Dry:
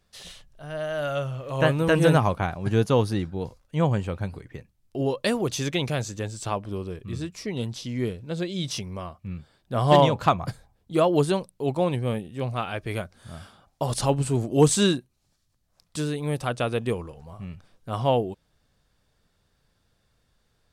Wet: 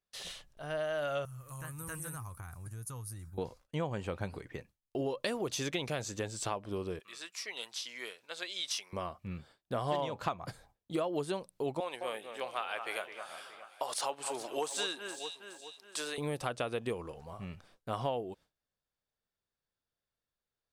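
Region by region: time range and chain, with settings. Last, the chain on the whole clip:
0:01.25–0:03.38: drawn EQ curve 120 Hz 0 dB, 180 Hz −14 dB, 610 Hz −26 dB, 1,200 Hz −10 dB, 2,200 Hz −16 dB, 3,300 Hz −21 dB, 10,000 Hz +12 dB + downward compressor 5 to 1, threshold −35 dBFS
0:07.00–0:08.93: high-pass filter 1,100 Hz + upward compression, threshold −58 dBFS
0:11.80–0:16.18: high-pass filter 700 Hz + de-essing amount 50% + delay that swaps between a low-pass and a high-pass 209 ms, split 2,500 Hz, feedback 64%, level −10 dB
whole clip: noise gate with hold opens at −47 dBFS; bass and treble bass −8 dB, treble −1 dB; downward compressor 5 to 1, threshold −32 dBFS

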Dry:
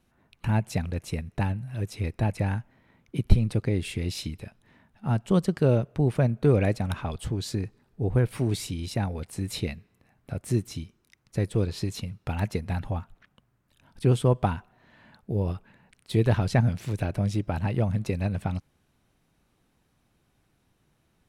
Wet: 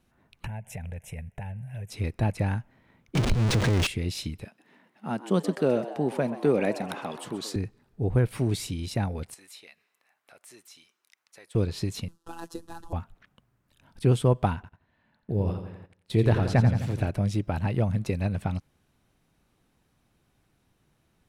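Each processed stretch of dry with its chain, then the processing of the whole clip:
0:00.46–0:01.90: phaser with its sweep stopped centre 1,200 Hz, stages 6 + downward compressor 10 to 1, threshold −32 dBFS
0:03.15–0:03.87: converter with a step at zero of −19 dBFS + downward compressor 4 to 1, threshold −19 dBFS + linearly interpolated sample-rate reduction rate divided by 3×
0:04.45–0:07.56: high-pass filter 190 Hz 24 dB per octave + echo with shifted repeats 129 ms, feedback 64%, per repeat +100 Hz, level −14 dB
0:09.34–0:11.55: high-pass filter 890 Hz + downward compressor 2 to 1, threshold −54 dBFS
0:12.08–0:12.93: variable-slope delta modulation 64 kbit/s + phases set to zero 167 Hz + phaser with its sweep stopped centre 590 Hz, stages 6
0:14.55–0:17.10: high-shelf EQ 5,300 Hz −5.5 dB + repeating echo 86 ms, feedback 59%, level −8.5 dB + noise gate −49 dBFS, range −14 dB
whole clip: no processing

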